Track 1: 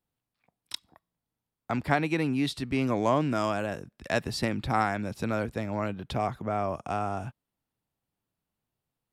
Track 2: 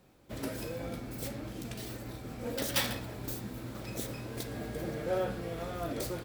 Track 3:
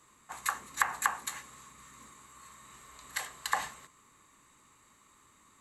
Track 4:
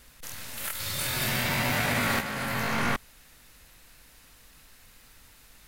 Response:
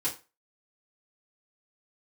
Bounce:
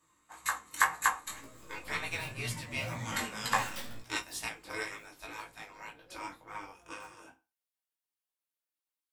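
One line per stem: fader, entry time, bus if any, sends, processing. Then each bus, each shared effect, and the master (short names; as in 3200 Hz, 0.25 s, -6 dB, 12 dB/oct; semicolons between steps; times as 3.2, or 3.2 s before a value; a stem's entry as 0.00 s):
+1.5 dB, 0.00 s, send -3 dB, spectral gate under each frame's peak -15 dB weak; high shelf 5200 Hz +7.5 dB
4.07 s -4.5 dB -> 4.78 s -14.5 dB, 1.00 s, no send, dry
+2.0 dB, 0.00 s, send -4 dB, dry
-7.0 dB, 1.05 s, send -9.5 dB, spectral contrast raised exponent 3.1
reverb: on, RT60 0.30 s, pre-delay 3 ms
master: chorus 2 Hz, delay 17.5 ms, depth 3.5 ms; upward expander 1.5:1, over -44 dBFS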